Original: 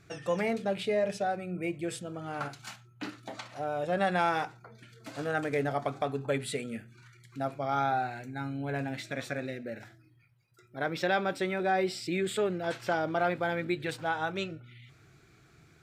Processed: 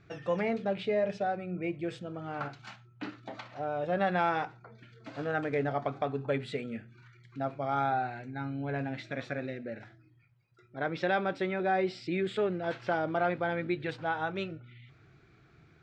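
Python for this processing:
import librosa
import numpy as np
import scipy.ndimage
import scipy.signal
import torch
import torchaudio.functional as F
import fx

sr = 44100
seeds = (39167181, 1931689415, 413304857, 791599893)

y = fx.air_absorb(x, sr, metres=180.0)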